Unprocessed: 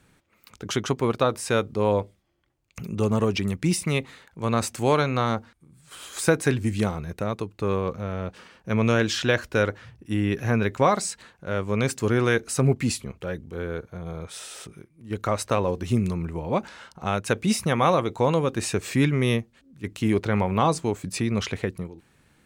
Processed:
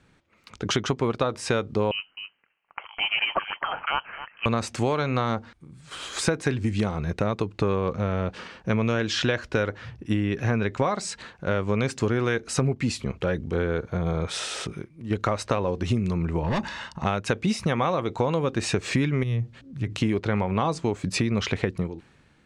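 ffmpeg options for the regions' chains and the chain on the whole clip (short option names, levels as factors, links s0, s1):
-filter_complex "[0:a]asettb=1/sr,asplit=3[s0][s1][s2];[s0]atrim=end=1.914[s3];[s1]atrim=start=1.91:end=4.46,asetpts=PTS-STARTPTS,afade=t=in:d=0.004:c=qsin,afade=t=out:st=2.546:d=0.004:c=qsin,highpass=f=670:w=0.5412,highpass=f=670:w=1.3066,aecho=1:1:259:0.168,atrim=end_sample=112455,lowpass=f=3000:t=q:w=0.5098,lowpass=f=3000:t=q:w=0.6013,lowpass=f=3000:t=q:w=0.9,lowpass=f=3000:t=q:w=2.563,afreqshift=-3500[s4];[s2]atrim=start=4.456[s5];[s3][s4]acrossfade=d=0.004:c1=hsin:c2=qsin[s6];[s6][s5]acrossfade=d=0.004:c1=qsin:c2=hsin,asettb=1/sr,asplit=3[s7][s8][s9];[s7]atrim=end=16.434[s10];[s8]atrim=start=16.43:end=17.05,asetpts=PTS-STARTPTS,afade=t=in:d=0.004:c=qsin,afade=t=out:st=0.616:d=0.004:c=qsin,asoftclip=type=hard:threshold=0.0398,bandreject=f=750:w=6.5,aecho=1:1:1.1:0.51,atrim=end_sample=27342[s11];[s9]atrim=start=17.046[s12];[s10][s11]acrossfade=d=0.004:c1=hsin:c2=qsin[s13];[s13][s12]acrossfade=d=0.004:c1=qsin:c2=hsin,asettb=1/sr,asplit=3[s14][s15][s16];[s14]atrim=end=19.234[s17];[s15]atrim=start=19.23:end=19.98,asetpts=PTS-STARTPTS,afade=t=in:d=0.004:c=qsin,afade=t=out:st=0.746:d=0.004:c=qsin,acompressor=threshold=0.02:ratio=8:attack=3.2:release=140:knee=1:detection=peak,equalizer=f=120:t=o:w=0.43:g=14.5[s18];[s16]atrim=start=19.976[s19];[s17][s18]acrossfade=d=0.004:c1=hsin:c2=qsin[s20];[s20][s19]acrossfade=d=0.004:c1=qsin:c2=hsin,dynaudnorm=f=100:g=11:m=3.55,lowpass=5800,acompressor=threshold=0.0891:ratio=6"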